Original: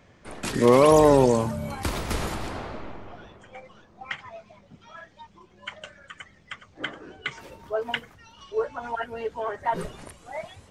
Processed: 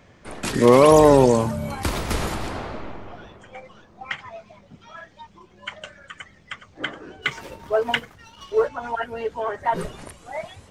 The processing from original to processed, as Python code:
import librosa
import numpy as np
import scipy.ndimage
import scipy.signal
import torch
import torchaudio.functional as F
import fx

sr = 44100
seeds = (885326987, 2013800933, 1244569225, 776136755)

y = fx.leveller(x, sr, passes=1, at=(7.22, 8.69))
y = F.gain(torch.from_numpy(y), 3.5).numpy()